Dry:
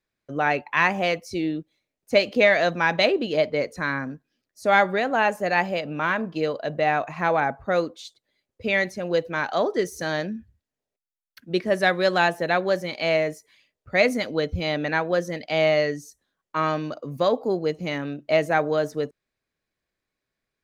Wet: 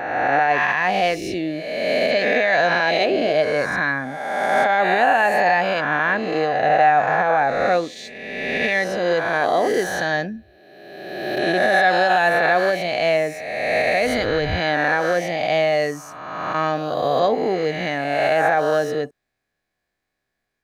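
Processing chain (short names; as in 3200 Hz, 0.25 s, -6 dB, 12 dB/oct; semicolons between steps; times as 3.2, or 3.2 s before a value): spectral swells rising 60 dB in 1.63 s; limiter -11.5 dBFS, peak gain reduction 9 dB; small resonant body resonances 740/1700 Hz, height 10 dB, ringing for 30 ms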